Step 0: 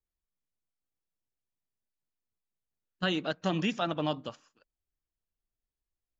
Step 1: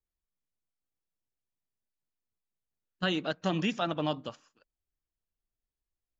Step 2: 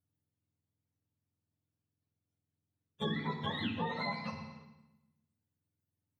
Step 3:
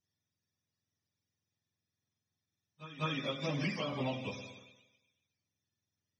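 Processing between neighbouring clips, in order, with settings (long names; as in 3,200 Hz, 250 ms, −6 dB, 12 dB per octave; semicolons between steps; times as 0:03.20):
no processing that can be heard
frequency axis turned over on the octave scale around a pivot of 790 Hz; feedback delay network reverb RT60 0.95 s, low-frequency decay 1.4×, high-frequency decay 0.95×, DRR 4 dB; downward compressor 2.5 to 1, threshold −40 dBFS, peak gain reduction 11 dB; level +3 dB
frequency axis turned over on the octave scale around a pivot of 730 Hz; harmonic and percussive parts rebalanced percussive +5 dB; echo ahead of the sound 199 ms −14 dB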